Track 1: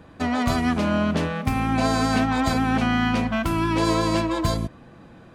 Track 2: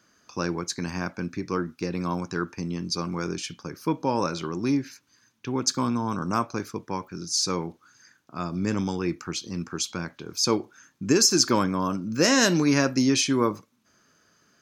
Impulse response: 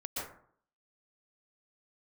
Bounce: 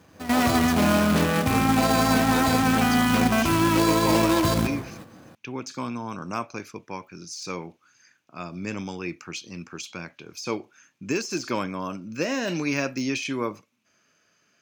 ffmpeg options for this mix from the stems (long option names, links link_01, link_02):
-filter_complex "[0:a]alimiter=limit=-18dB:level=0:latency=1:release=55,acrusher=bits=2:mode=log:mix=0:aa=0.000001,volume=3dB,asplit=2[link_01][link_02];[link_02]volume=-8.5dB[link_03];[1:a]deesser=0.6,equalizer=frequency=630:width_type=o:width=0.67:gain=5,equalizer=frequency=2500:width_type=o:width=0.67:gain=12,equalizer=frequency=6300:width_type=o:width=0.67:gain=3,volume=-6.5dB,asplit=2[link_04][link_05];[link_05]apad=whole_len=235892[link_06];[link_01][link_06]sidechaingate=range=-21dB:threshold=-54dB:ratio=16:detection=peak[link_07];[2:a]atrim=start_sample=2205[link_08];[link_03][link_08]afir=irnorm=-1:irlink=0[link_09];[link_07][link_04][link_09]amix=inputs=3:normalize=0,highpass=74"